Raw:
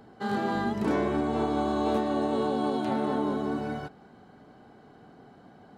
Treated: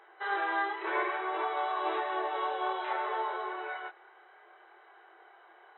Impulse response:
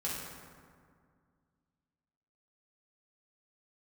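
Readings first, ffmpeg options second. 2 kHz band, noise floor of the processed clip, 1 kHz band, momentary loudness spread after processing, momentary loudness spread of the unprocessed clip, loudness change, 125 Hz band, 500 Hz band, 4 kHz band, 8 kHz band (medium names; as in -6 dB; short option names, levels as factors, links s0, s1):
+5.0 dB, -58 dBFS, +0.5 dB, 6 LU, 5 LU, -4.5 dB, under -40 dB, -7.5 dB, -1.5 dB, no reading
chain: -af "afftfilt=real='re*between(b*sr/4096,330,4000)':imag='im*between(b*sr/4096,330,4000)':win_size=4096:overlap=0.75,acontrast=25,equalizer=f=500:t=o:w=1:g=-6,equalizer=f=1000:t=o:w=1:g=6,equalizer=f=2000:t=o:w=1:g=11,flanger=delay=22.5:depth=5.5:speed=0.6,volume=0.473"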